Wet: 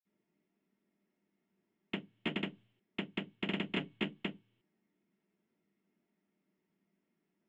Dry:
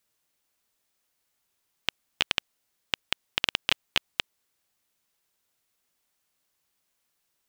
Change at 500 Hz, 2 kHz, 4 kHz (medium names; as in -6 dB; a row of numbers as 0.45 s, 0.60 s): +1.0 dB, -10.0 dB, -15.5 dB